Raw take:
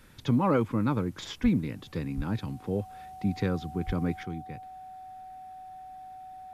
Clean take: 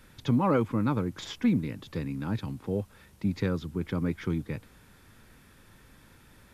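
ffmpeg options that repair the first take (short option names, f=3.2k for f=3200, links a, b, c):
-filter_complex "[0:a]bandreject=f=750:w=30,asplit=3[a][b][c];[a]afade=t=out:st=1.42:d=0.02[d];[b]highpass=f=140:w=0.5412,highpass=f=140:w=1.3066,afade=t=in:st=1.42:d=0.02,afade=t=out:st=1.54:d=0.02[e];[c]afade=t=in:st=1.54:d=0.02[f];[d][e][f]amix=inputs=3:normalize=0,asplit=3[g][h][i];[g]afade=t=out:st=2.16:d=0.02[j];[h]highpass=f=140:w=0.5412,highpass=f=140:w=1.3066,afade=t=in:st=2.16:d=0.02,afade=t=out:st=2.28:d=0.02[k];[i]afade=t=in:st=2.28:d=0.02[l];[j][k][l]amix=inputs=3:normalize=0,asplit=3[m][n][o];[m]afade=t=out:st=3.86:d=0.02[p];[n]highpass=f=140:w=0.5412,highpass=f=140:w=1.3066,afade=t=in:st=3.86:d=0.02,afade=t=out:st=3.98:d=0.02[q];[o]afade=t=in:st=3.98:d=0.02[r];[p][q][r]amix=inputs=3:normalize=0,asetnsamples=n=441:p=0,asendcmd='4.23 volume volume 7.5dB',volume=0dB"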